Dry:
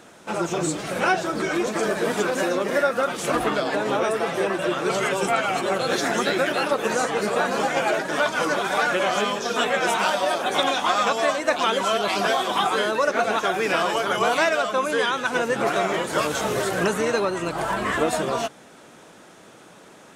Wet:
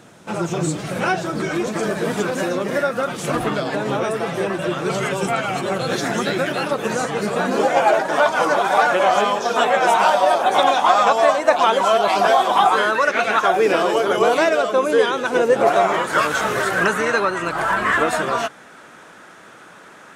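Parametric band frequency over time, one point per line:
parametric band +10 dB 1.3 octaves
0:07.34 130 Hz
0:07.79 800 Hz
0:12.66 800 Hz
0:13.24 2,800 Hz
0:13.64 410 Hz
0:15.42 410 Hz
0:16.15 1,500 Hz

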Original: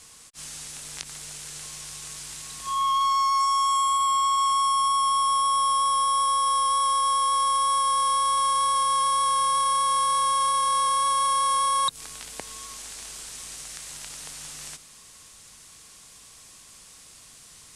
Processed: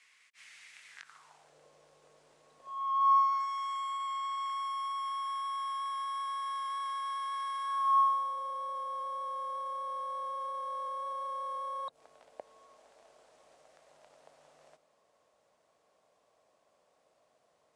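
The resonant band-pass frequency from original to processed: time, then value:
resonant band-pass, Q 4.3
0:00.88 2,100 Hz
0:01.58 540 Hz
0:02.59 540 Hz
0:03.51 1,800 Hz
0:07.63 1,800 Hz
0:08.40 610 Hz

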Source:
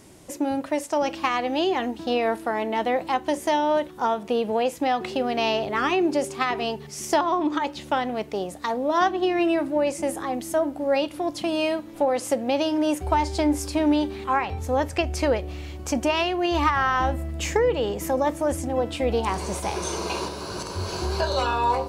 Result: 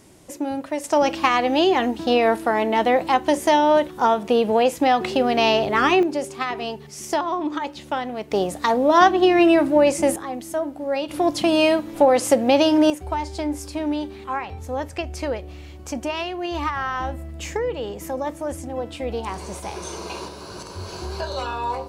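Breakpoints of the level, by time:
−1 dB
from 0:00.84 +5.5 dB
from 0:06.03 −1.5 dB
from 0:08.31 +7 dB
from 0:10.16 −2 dB
from 0:11.09 +7 dB
from 0:12.90 −4 dB

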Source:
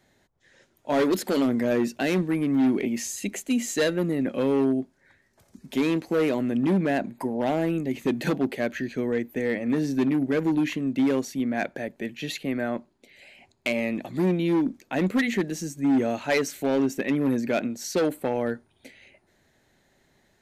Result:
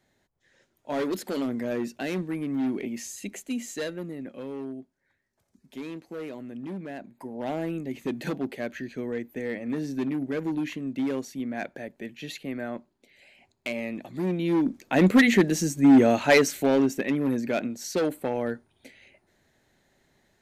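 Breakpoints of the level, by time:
0:03.46 −6 dB
0:04.46 −13.5 dB
0:07.08 −13.5 dB
0:07.51 −5.5 dB
0:14.20 −5.5 dB
0:15.08 +6 dB
0:16.28 +6 dB
0:17.19 −2 dB

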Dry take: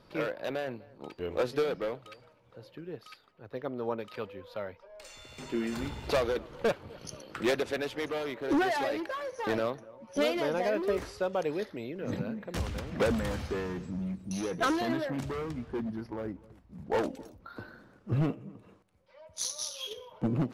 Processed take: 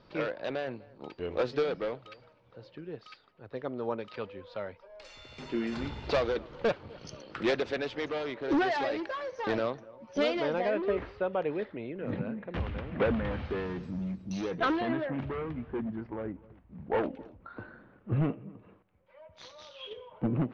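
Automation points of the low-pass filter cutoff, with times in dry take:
low-pass filter 24 dB per octave
0:10.29 5,300 Hz
0:11.02 3,000 Hz
0:13.32 3,000 Hz
0:14.06 6,400 Hz
0:14.97 2,900 Hz

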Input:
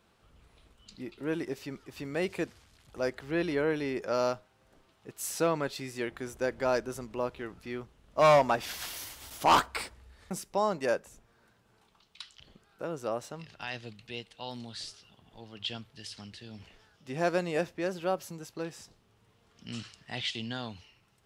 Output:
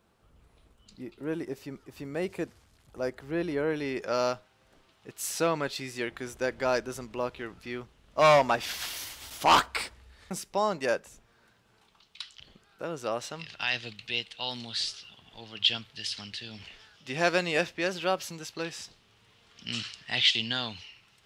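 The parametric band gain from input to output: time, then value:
parametric band 3,300 Hz 2.5 octaves
0:03.55 −4.5 dB
0:03.97 +5 dB
0:12.82 +5 dB
0:13.31 +12 dB

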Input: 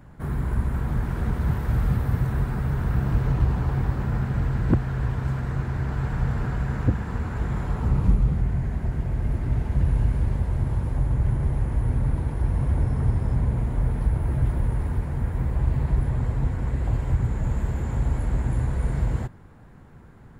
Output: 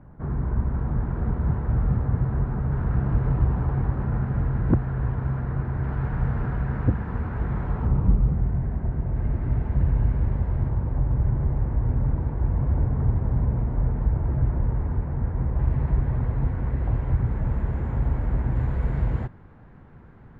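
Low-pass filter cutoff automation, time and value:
1,200 Hz
from 0:02.72 1,500 Hz
from 0:05.83 1,900 Hz
from 0:07.87 1,300 Hz
from 0:09.16 1,800 Hz
from 0:10.69 1,400 Hz
from 0:15.59 2,000 Hz
from 0:18.56 2,700 Hz

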